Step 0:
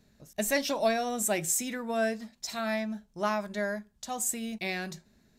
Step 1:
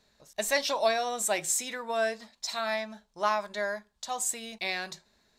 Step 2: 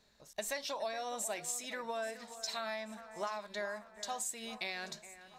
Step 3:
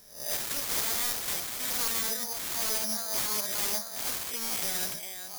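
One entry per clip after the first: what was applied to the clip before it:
ten-band EQ 125 Hz -5 dB, 250 Hz -4 dB, 500 Hz +5 dB, 1000 Hz +10 dB, 2000 Hz +4 dB, 4000 Hz +10 dB, 8000 Hz +5 dB; gain -6.5 dB
compressor, threshold -34 dBFS, peak gain reduction 13 dB; echo with dull and thin repeats by turns 0.417 s, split 2200 Hz, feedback 67%, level -13 dB; gain -2 dB
spectral swells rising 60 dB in 0.47 s; wrapped overs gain 37 dB; careless resampling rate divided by 8×, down filtered, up zero stuff; gain +6.5 dB

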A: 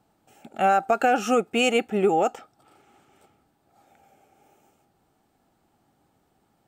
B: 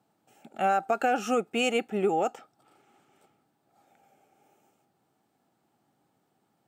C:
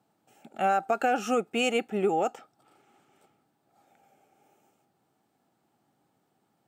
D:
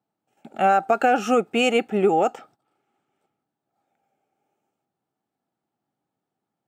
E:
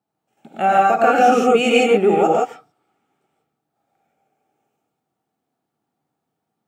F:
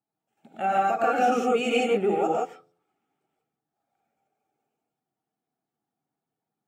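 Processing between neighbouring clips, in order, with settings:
HPF 110 Hz 24 dB/oct; gain -5 dB
nothing audible
gate -58 dBFS, range -17 dB; high shelf 4800 Hz -6 dB; gain +7 dB
non-linear reverb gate 0.19 s rising, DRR -3.5 dB
bin magnitudes rounded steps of 15 dB; de-hum 86.26 Hz, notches 7; gain -8.5 dB

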